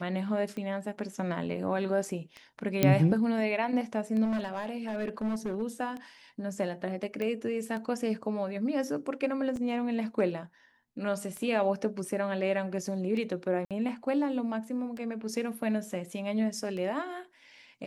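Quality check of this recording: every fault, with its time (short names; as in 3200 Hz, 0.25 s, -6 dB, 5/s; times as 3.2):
tick 33 1/3 rpm -27 dBFS
2.83 pop -9 dBFS
4.24–5.63 clipped -27.5 dBFS
7.22 pop -22 dBFS
9.56 gap 2 ms
13.65–13.71 gap 57 ms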